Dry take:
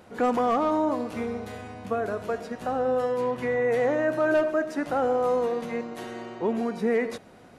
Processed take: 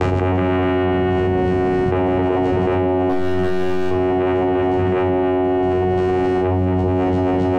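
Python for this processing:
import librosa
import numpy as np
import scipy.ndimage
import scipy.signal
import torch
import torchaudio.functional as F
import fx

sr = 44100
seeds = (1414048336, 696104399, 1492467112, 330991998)

y = fx.low_shelf(x, sr, hz=470.0, db=-5.0)
y = fx.vocoder(y, sr, bands=4, carrier='saw', carrier_hz=92.0)
y = fx.high_shelf(y, sr, hz=4700.0, db=-6.0)
y = fx.echo_feedback(y, sr, ms=269, feedback_pct=47, wet_db=-5.5)
y = fx.overload_stage(y, sr, gain_db=29.5, at=(3.09, 3.91))
y = fx.room_shoebox(y, sr, seeds[0], volume_m3=1000.0, walls='furnished', distance_m=3.7)
y = fx.env_flatten(y, sr, amount_pct=100)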